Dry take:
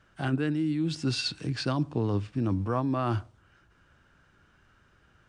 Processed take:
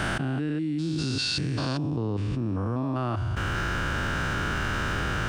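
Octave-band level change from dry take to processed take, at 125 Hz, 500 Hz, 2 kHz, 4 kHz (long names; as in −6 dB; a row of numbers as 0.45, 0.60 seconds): +3.5, +1.0, +12.0, +4.5 decibels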